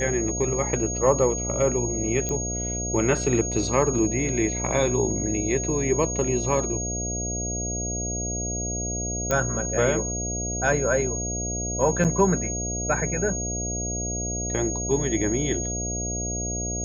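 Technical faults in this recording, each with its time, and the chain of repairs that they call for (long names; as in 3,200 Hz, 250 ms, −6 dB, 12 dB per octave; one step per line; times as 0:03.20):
mains buzz 60 Hz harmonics 12 −31 dBFS
whistle 6,600 Hz −29 dBFS
0:02.29: click −14 dBFS
0:09.31: click −10 dBFS
0:12.04–0:12.05: drop-out 7.5 ms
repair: click removal
hum removal 60 Hz, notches 12
notch filter 6,600 Hz, Q 30
repair the gap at 0:12.04, 7.5 ms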